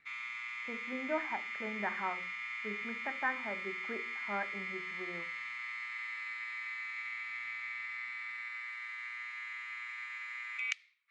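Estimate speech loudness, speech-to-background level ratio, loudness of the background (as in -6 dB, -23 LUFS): -41.0 LUFS, -1.5 dB, -39.5 LUFS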